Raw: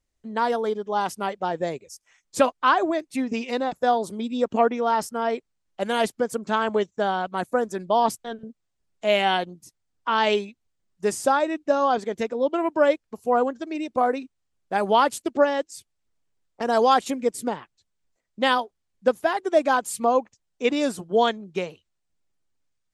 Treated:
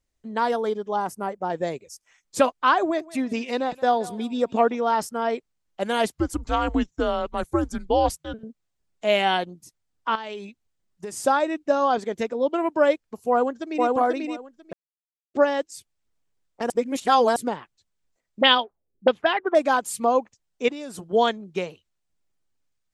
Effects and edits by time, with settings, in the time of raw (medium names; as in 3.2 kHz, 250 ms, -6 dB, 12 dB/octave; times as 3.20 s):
0.96–1.50 s: peaking EQ 3.4 kHz -15 dB 1.4 oct
2.79–4.75 s: thinning echo 173 ms, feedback 46%, high-pass 600 Hz, level -16.5 dB
6.11–8.34 s: frequency shift -160 Hz
10.15–11.17 s: compression 8:1, threshold -30 dBFS
13.29–13.89 s: echo throw 490 ms, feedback 15%, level -1.5 dB
14.73–15.34 s: mute
16.70–17.36 s: reverse
18.41–19.55 s: touch-sensitive low-pass 290–3300 Hz up, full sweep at -18 dBFS
20.68–21.13 s: compression 12:1, threshold -31 dBFS